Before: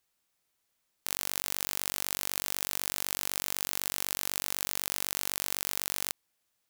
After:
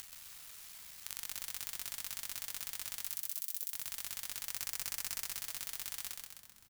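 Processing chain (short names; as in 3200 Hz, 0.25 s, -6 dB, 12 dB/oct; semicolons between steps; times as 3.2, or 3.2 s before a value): cycle switcher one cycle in 3, muted; 3.02–3.71 differentiator; on a send at -13 dB: reverb RT60 1.1 s, pre-delay 7 ms; on the sum: upward compressor, threshold -39 dBFS; 4.45–5.25 Butterworth band-stop 3600 Hz, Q 1.7; compressor 3:1, threshold -45 dBFS, peak gain reduction 16 dB; sample leveller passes 2; bell 400 Hz -12 dB 2.4 oct; frequency-shifting echo 0.129 s, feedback 56%, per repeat -76 Hz, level -4 dB; gain +3.5 dB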